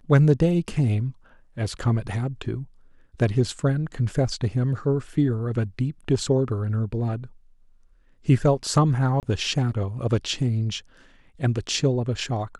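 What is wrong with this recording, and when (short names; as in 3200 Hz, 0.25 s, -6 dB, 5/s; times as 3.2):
9.2–9.23 gap 28 ms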